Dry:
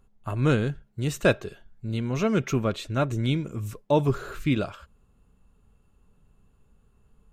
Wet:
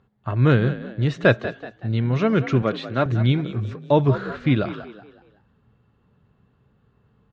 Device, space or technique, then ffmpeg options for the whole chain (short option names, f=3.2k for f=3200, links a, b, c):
frequency-shifting delay pedal into a guitar cabinet: -filter_complex "[0:a]asplit=5[a][b][c][d][e];[b]adelay=188,afreqshift=50,volume=-13.5dB[f];[c]adelay=376,afreqshift=100,volume=-21.9dB[g];[d]adelay=564,afreqshift=150,volume=-30.3dB[h];[e]adelay=752,afreqshift=200,volume=-38.7dB[i];[a][f][g][h][i]amix=inputs=5:normalize=0,highpass=97,equalizer=f=120:t=q:w=4:g=7,equalizer=f=1.8k:t=q:w=4:g=5,equalizer=f=2.6k:t=q:w=4:g=-4,lowpass=f=4.3k:w=0.5412,lowpass=f=4.3k:w=1.3066,asettb=1/sr,asplit=3[j][k][l];[j]atrim=end=2.624[m];[k]atrim=start=2.62:end=3.06,asetpts=PTS-STARTPTS,afade=t=in:d=0.004:c=qsin,afade=t=out:st=0.436:d=0.004:c=qsin,highpass=180[n];[l]atrim=start=3.056[o];[m][n]acrossfade=d=0.004:c1=hsin:c2=qsin[p];[p][o]acrossfade=d=0.004:c1=qsin:c2=hsin,volume=4dB"